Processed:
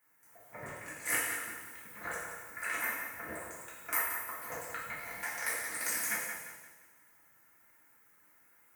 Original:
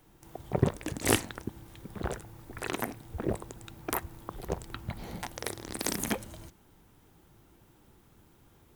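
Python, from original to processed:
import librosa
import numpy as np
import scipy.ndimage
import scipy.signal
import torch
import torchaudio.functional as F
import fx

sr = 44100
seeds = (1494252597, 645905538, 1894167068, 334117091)

y = fx.octave_divider(x, sr, octaves=2, level_db=0.0)
y = fx.high_shelf_res(y, sr, hz=2600.0, db=-11.0, q=3.0)
y = fx.rider(y, sr, range_db=4, speed_s=0.5)
y = np.diff(y, prepend=0.0)
y = fx.notch_comb(y, sr, f0_hz=390.0)
y = fx.echo_feedback(y, sr, ms=175, feedback_pct=37, wet_db=-9.0)
y = fx.rev_double_slope(y, sr, seeds[0], early_s=0.89, late_s=3.1, knee_db=-27, drr_db=-7.5)
y = F.gain(torch.from_numpy(y), 4.0).numpy()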